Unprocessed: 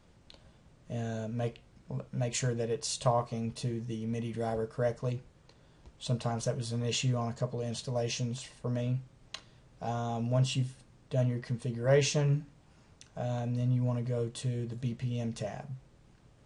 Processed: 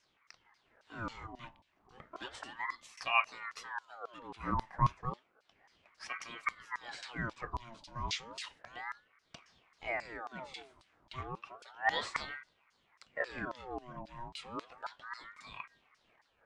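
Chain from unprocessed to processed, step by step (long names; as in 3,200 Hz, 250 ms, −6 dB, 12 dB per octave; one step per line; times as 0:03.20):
auto-filter band-pass saw down 3.7 Hz 430–4,300 Hz
rotating-speaker cabinet horn 0.8 Hz
ring modulator whose carrier an LFO sweeps 1,100 Hz, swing 60%, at 0.32 Hz
level +10 dB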